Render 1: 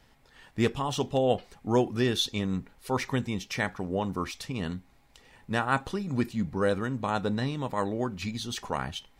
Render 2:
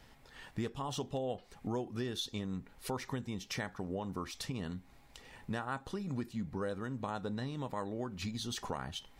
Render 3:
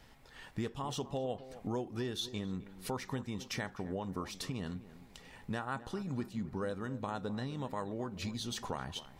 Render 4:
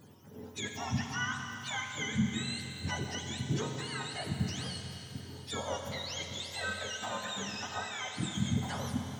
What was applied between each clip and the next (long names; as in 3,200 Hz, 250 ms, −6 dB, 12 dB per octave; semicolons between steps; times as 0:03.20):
dynamic equaliser 2,400 Hz, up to −5 dB, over −48 dBFS, Q 2.7; downward compressor 4 to 1, threshold −38 dBFS, peak gain reduction 16 dB; level +1.5 dB
tape delay 259 ms, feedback 47%, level −13 dB, low-pass 1,300 Hz
frequency axis turned over on the octave scale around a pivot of 880 Hz; four-comb reverb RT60 3.7 s, combs from 30 ms, DRR 3.5 dB; level +3 dB